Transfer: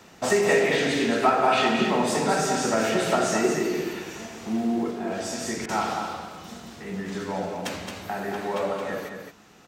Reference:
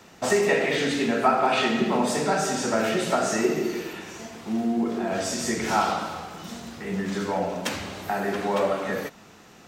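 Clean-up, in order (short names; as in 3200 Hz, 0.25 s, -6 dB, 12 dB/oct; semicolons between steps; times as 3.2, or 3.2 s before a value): clip repair -10.5 dBFS; interpolate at 5.66, 27 ms; inverse comb 0.22 s -6 dB; gain correction +4 dB, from 4.91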